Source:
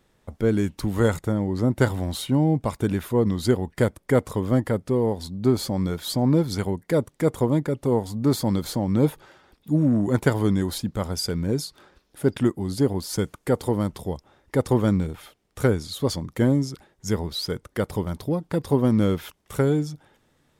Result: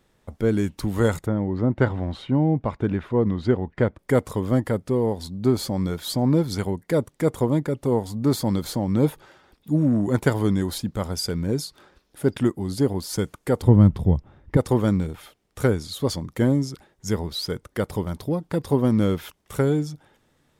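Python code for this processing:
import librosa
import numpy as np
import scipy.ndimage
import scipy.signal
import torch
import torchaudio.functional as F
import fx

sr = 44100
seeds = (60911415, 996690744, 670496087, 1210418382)

y = fx.lowpass(x, sr, hz=2500.0, slope=12, at=(1.26, 3.99))
y = fx.bass_treble(y, sr, bass_db=15, treble_db=-12, at=(13.62, 14.57))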